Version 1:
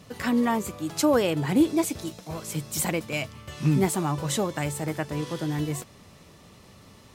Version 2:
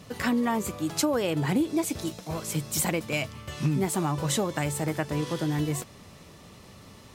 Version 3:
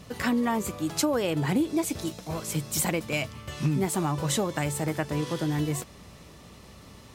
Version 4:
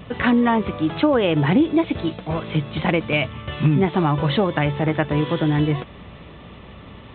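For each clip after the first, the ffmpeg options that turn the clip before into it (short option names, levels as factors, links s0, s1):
-af "acompressor=threshold=0.0631:ratio=6,volume=1.26"
-af "aeval=exprs='val(0)+0.00158*(sin(2*PI*60*n/s)+sin(2*PI*2*60*n/s)/2+sin(2*PI*3*60*n/s)/3+sin(2*PI*4*60*n/s)/4+sin(2*PI*5*60*n/s)/5)':c=same"
-af "aresample=8000,aresample=44100,volume=2.66"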